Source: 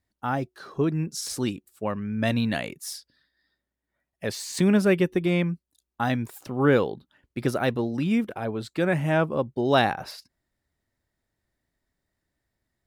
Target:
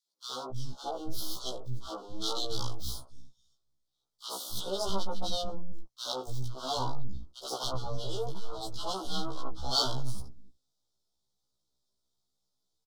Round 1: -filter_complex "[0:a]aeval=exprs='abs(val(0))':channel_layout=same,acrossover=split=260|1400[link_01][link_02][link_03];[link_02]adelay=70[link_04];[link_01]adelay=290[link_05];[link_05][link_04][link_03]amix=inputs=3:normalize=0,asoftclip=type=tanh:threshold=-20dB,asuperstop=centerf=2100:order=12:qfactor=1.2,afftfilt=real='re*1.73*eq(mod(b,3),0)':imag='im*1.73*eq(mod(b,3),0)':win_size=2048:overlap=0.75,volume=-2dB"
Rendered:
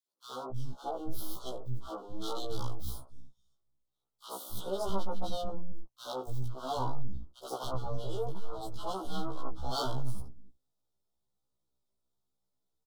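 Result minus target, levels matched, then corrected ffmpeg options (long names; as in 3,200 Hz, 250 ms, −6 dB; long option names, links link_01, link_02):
4,000 Hz band −6.5 dB
-filter_complex "[0:a]aeval=exprs='abs(val(0))':channel_layout=same,acrossover=split=260|1400[link_01][link_02][link_03];[link_02]adelay=70[link_04];[link_01]adelay=290[link_05];[link_05][link_04][link_03]amix=inputs=3:normalize=0,asoftclip=type=tanh:threshold=-20dB,asuperstop=centerf=2100:order=12:qfactor=1.2,equalizer=frequency=5000:width_type=o:width=1.6:gain=12,afftfilt=real='re*1.73*eq(mod(b,3),0)':imag='im*1.73*eq(mod(b,3),0)':win_size=2048:overlap=0.75,volume=-2dB"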